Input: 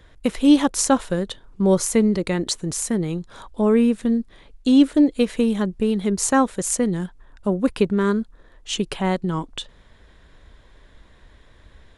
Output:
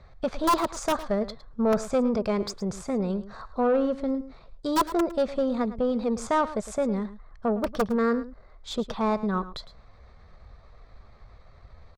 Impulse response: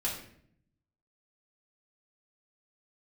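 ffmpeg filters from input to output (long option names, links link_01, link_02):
-filter_complex "[0:a]lowpass=frequency=5400:width=0.5412,lowpass=frequency=5400:width=1.3066,bandreject=frequency=2500:width=10,aeval=exprs='(mod(2.51*val(0)+1,2)-1)/2.51':channel_layout=same,equalizer=frequency=260:width_type=o:width=0.44:gain=-13,asoftclip=type=tanh:threshold=-18dB,asetrate=50951,aresample=44100,atempo=0.865537,highshelf=frequency=1600:width_type=q:width=1.5:gain=-6.5,asplit=2[link_01][link_02];[link_02]aecho=0:1:108:0.178[link_03];[link_01][link_03]amix=inputs=2:normalize=0"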